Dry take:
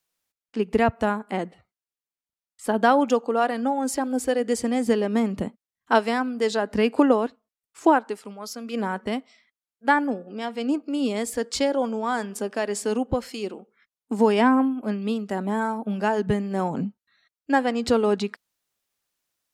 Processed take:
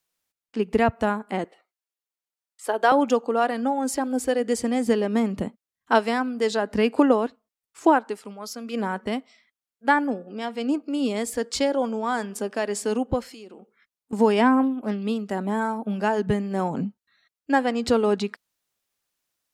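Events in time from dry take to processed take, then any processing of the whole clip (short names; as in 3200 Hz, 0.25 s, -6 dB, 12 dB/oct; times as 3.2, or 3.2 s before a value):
1.44–2.92 HPF 360 Hz 24 dB/oct
13.22–14.13 compressor, threshold -40 dBFS
14.63–15.03 Doppler distortion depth 0.13 ms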